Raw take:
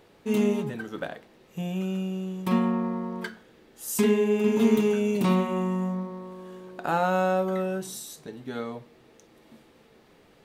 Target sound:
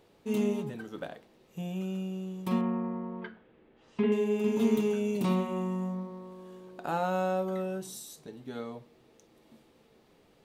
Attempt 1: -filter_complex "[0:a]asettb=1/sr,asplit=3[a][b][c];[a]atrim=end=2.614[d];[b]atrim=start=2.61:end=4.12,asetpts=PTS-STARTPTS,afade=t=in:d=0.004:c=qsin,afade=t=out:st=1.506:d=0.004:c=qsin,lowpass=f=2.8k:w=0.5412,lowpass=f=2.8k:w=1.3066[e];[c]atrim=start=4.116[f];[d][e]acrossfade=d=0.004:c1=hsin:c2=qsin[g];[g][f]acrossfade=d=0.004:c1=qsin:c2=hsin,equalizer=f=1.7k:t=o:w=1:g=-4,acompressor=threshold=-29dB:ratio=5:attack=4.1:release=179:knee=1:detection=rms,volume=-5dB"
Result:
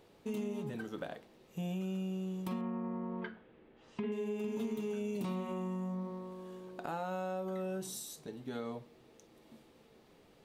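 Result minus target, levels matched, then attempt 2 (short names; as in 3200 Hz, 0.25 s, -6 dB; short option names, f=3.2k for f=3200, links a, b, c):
compressor: peak gain reduction +13.5 dB
-filter_complex "[0:a]asettb=1/sr,asplit=3[a][b][c];[a]atrim=end=2.614[d];[b]atrim=start=2.61:end=4.12,asetpts=PTS-STARTPTS,afade=t=in:d=0.004:c=qsin,afade=t=out:st=1.506:d=0.004:c=qsin,lowpass=f=2.8k:w=0.5412,lowpass=f=2.8k:w=1.3066[e];[c]atrim=start=4.116[f];[d][e]acrossfade=d=0.004:c1=hsin:c2=qsin[g];[g][f]acrossfade=d=0.004:c1=qsin:c2=hsin,equalizer=f=1.7k:t=o:w=1:g=-4,volume=-5dB"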